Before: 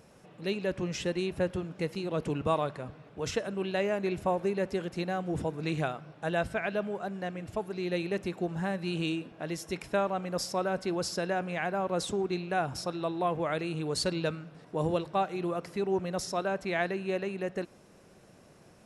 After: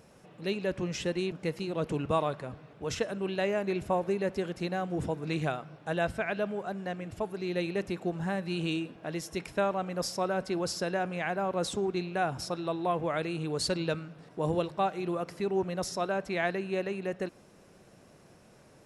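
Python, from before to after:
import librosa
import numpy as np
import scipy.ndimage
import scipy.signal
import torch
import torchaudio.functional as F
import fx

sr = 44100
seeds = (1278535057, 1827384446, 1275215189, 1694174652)

y = fx.edit(x, sr, fx.cut(start_s=1.32, length_s=0.36), tone=tone)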